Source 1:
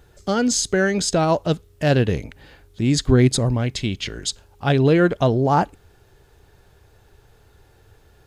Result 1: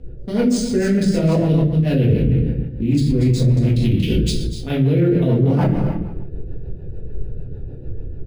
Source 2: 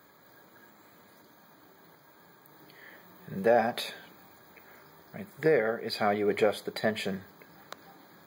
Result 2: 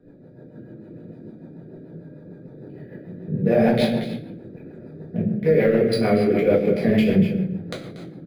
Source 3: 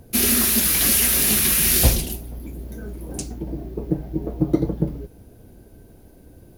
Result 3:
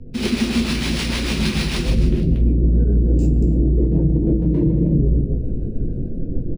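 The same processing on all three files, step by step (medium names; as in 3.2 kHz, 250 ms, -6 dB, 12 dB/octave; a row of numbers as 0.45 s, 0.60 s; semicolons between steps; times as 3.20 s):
local Wiener filter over 41 samples; high-order bell 1 kHz -9 dB; level rider gain up to 4 dB; speakerphone echo 260 ms, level -27 dB; reverse; compression 16:1, threshold -30 dBFS; reverse; treble shelf 4 kHz -8 dB; on a send: delay 235 ms -10.5 dB; on the sum: simulated room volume 140 m³, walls mixed, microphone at 1.8 m; rotary cabinet horn 6.7 Hz; loudness maximiser +19 dB; decimation joined by straight lines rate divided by 3×; trim -7 dB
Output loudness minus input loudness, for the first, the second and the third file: +2.5 LU, +8.5 LU, -1.5 LU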